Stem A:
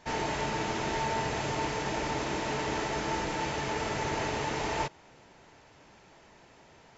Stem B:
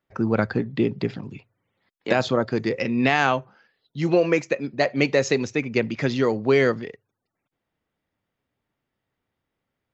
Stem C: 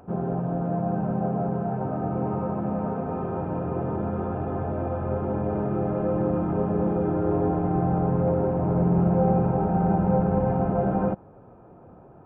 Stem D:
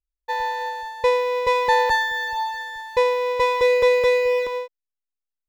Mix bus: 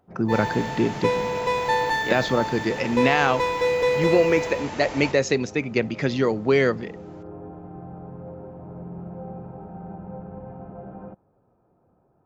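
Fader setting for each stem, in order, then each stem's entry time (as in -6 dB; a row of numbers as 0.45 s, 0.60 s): -3.0 dB, -0.5 dB, -15.5 dB, -4.5 dB; 0.25 s, 0.00 s, 0.00 s, 0.00 s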